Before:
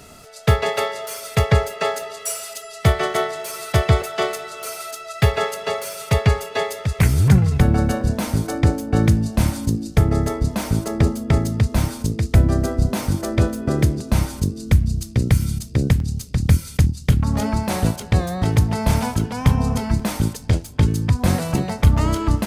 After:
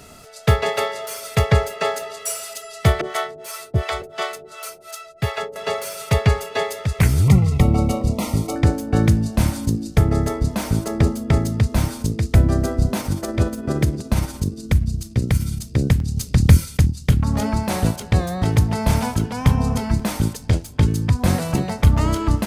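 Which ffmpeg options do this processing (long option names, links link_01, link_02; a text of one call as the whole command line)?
ffmpeg -i in.wav -filter_complex "[0:a]asettb=1/sr,asplit=3[link_01][link_02][link_03];[link_01]atrim=end=3.014[link_04];[link_02]atrim=start=3.01:end=5.56,asetpts=PTS-STARTPTS,afade=type=in:duration=0.004:curve=qsin,afade=type=out:start_time=2.546:duration=0.004:curve=qsin,acrossover=split=530[link_05][link_06];[link_05]aeval=exprs='val(0)*(1-1/2+1/2*cos(2*PI*2.8*n/s))':channel_layout=same[link_07];[link_06]aeval=exprs='val(0)*(1-1/2-1/2*cos(2*PI*2.8*n/s))':channel_layout=same[link_08];[link_07][link_08]amix=inputs=2:normalize=0[link_09];[link_03]atrim=start=5.556[link_10];[link_04][link_09]acrossfade=duration=0.004:curve1=hsin:curve2=qsin[link_11];[link_11][link_10]acrossfade=duration=0.004:curve1=qsin:curve2=hsin,asettb=1/sr,asplit=3[link_12][link_13][link_14];[link_12]atrim=end=7.224[link_15];[link_13]atrim=start=7.22:end=8.56,asetpts=PTS-STARTPTS,afade=type=in:duration=0.004:curve=qsin,afade=type=out:start_time=1.336:duration=0.004:curve=qsin,asuperstop=centerf=1600:order=20:qfactor=3.6[link_16];[link_14]atrim=start=8.556[link_17];[link_15][link_16]acrossfade=duration=0.004:curve1=hsin:curve2=qsin[link_18];[link_18][link_17]acrossfade=duration=0.004:curve1=qsin:curve2=hsin,asplit=3[link_19][link_20][link_21];[link_19]afade=type=out:start_time=12.98:duration=0.02[link_22];[link_20]tremolo=f=17:d=0.39,afade=type=in:start_time=12.98:duration=0.02,afade=type=out:start_time=15.59:duration=0.02[link_23];[link_21]afade=type=in:start_time=15.59:duration=0.02[link_24];[link_22][link_23][link_24]amix=inputs=3:normalize=0,asplit=3[link_25][link_26][link_27];[link_25]afade=type=out:start_time=16.16:duration=0.02[link_28];[link_26]acontrast=40,afade=type=in:start_time=16.16:duration=0.02,afade=type=out:start_time=16.64:duration=0.02[link_29];[link_27]afade=type=in:start_time=16.64:duration=0.02[link_30];[link_28][link_29][link_30]amix=inputs=3:normalize=0" out.wav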